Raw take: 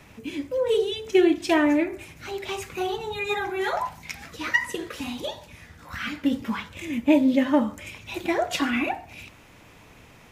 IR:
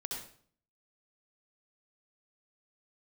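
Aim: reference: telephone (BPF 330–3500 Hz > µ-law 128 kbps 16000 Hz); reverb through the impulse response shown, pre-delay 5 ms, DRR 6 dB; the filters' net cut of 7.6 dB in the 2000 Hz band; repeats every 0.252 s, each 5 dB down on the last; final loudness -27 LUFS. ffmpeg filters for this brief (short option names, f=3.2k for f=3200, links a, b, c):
-filter_complex "[0:a]equalizer=f=2k:t=o:g=-8.5,aecho=1:1:252|504|756|1008|1260|1512|1764:0.562|0.315|0.176|0.0988|0.0553|0.031|0.0173,asplit=2[a][b];[1:a]atrim=start_sample=2205,adelay=5[c];[b][c]afir=irnorm=-1:irlink=0,volume=-6.5dB[d];[a][d]amix=inputs=2:normalize=0,highpass=330,lowpass=3.5k" -ar 16000 -c:a pcm_mulaw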